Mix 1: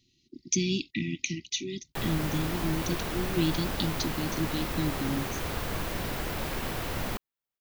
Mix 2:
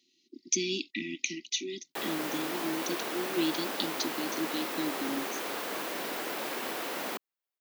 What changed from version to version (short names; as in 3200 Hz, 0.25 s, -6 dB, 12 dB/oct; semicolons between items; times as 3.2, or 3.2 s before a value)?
master: add HPF 270 Hz 24 dB/oct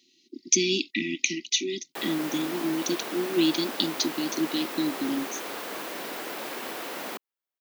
speech +7.0 dB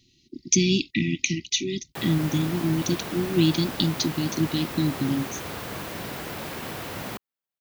background: add HPF 110 Hz; master: remove HPF 270 Hz 24 dB/oct